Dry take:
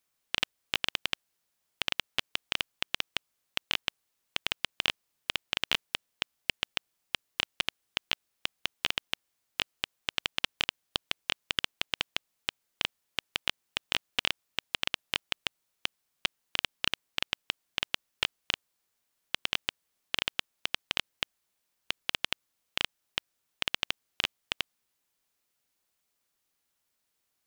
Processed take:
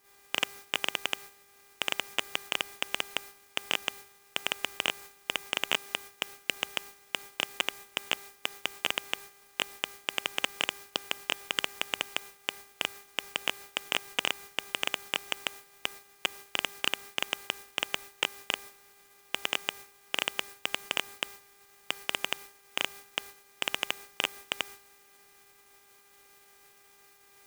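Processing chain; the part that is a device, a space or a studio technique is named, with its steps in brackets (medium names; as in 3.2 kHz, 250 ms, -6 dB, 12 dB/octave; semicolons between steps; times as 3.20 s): aircraft radio (band-pass 310–2500 Hz; hard clipper -20.5 dBFS, distortion -9 dB; mains buzz 400 Hz, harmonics 6, -62 dBFS -1 dB/octave; white noise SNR 13 dB; gate -54 dBFS, range -19 dB); trim +8.5 dB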